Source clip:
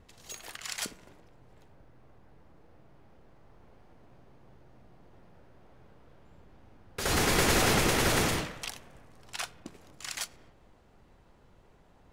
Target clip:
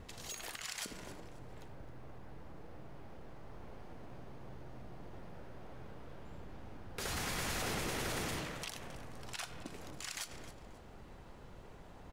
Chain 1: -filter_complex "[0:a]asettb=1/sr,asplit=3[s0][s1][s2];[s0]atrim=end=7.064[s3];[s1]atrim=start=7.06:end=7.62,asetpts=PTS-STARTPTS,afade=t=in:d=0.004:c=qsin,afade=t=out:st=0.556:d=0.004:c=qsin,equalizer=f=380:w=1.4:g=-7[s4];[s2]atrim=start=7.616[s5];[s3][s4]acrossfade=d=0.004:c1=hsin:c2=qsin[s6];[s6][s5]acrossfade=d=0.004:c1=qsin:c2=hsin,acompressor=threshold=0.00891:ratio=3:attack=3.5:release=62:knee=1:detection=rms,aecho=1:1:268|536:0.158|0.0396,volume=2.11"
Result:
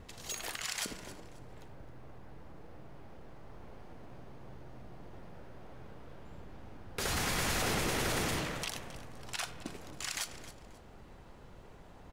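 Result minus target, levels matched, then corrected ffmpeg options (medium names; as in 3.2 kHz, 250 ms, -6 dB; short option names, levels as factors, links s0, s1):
compression: peak gain reduction -5.5 dB
-filter_complex "[0:a]asettb=1/sr,asplit=3[s0][s1][s2];[s0]atrim=end=7.064[s3];[s1]atrim=start=7.06:end=7.62,asetpts=PTS-STARTPTS,afade=t=in:d=0.004:c=qsin,afade=t=out:st=0.556:d=0.004:c=qsin,equalizer=f=380:w=1.4:g=-7[s4];[s2]atrim=start=7.616[s5];[s3][s4]acrossfade=d=0.004:c1=hsin:c2=qsin[s6];[s6][s5]acrossfade=d=0.004:c1=qsin:c2=hsin,acompressor=threshold=0.00355:ratio=3:attack=3.5:release=62:knee=1:detection=rms,aecho=1:1:268|536:0.158|0.0396,volume=2.11"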